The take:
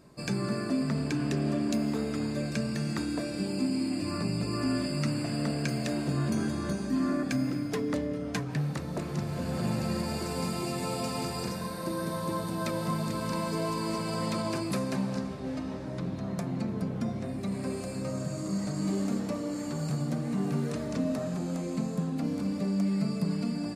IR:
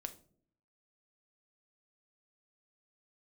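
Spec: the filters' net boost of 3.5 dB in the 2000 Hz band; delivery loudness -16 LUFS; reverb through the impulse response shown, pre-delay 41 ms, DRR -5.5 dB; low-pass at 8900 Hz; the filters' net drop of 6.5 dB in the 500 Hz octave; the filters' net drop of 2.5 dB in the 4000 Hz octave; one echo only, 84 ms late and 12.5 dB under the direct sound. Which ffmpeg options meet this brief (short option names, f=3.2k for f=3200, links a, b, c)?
-filter_complex "[0:a]lowpass=8.9k,equalizer=f=500:t=o:g=-9,equalizer=f=2k:t=o:g=6,equalizer=f=4k:t=o:g=-4,aecho=1:1:84:0.237,asplit=2[a][b];[1:a]atrim=start_sample=2205,adelay=41[c];[b][c]afir=irnorm=-1:irlink=0,volume=8.5dB[d];[a][d]amix=inputs=2:normalize=0,volume=9.5dB"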